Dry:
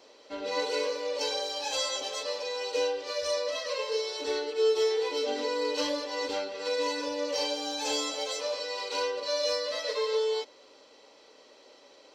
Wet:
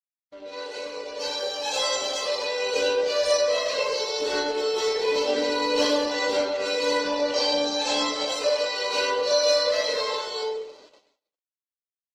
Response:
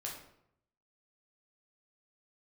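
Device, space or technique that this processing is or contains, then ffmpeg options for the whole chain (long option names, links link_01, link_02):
speakerphone in a meeting room: -filter_complex "[0:a]asettb=1/sr,asplit=3[link_01][link_02][link_03];[link_01]atrim=end=6.964[link_04];[link_02]atrim=start=6.96:end=8.29,asetpts=PTS-STARTPTS,afade=type=in:duration=0.004:curve=qsin,afade=type=out:start_time=1.326:duration=0.004:curve=qsin,lowpass=6300[link_05];[link_03]atrim=start=8.286[link_06];[link_04][link_05]acrossfade=duration=0.004:curve1=hsin:curve2=qsin[link_07];[link_07][link_06]acrossfade=duration=0.004:curve1=qsin:curve2=hsin[link_08];[1:a]atrim=start_sample=2205[link_09];[link_08][link_09]afir=irnorm=-1:irlink=0,dynaudnorm=framelen=320:gausssize=9:maxgain=13.5dB,agate=range=-48dB:threshold=-45dB:ratio=16:detection=peak,volume=-5dB" -ar 48000 -c:a libopus -b:a 16k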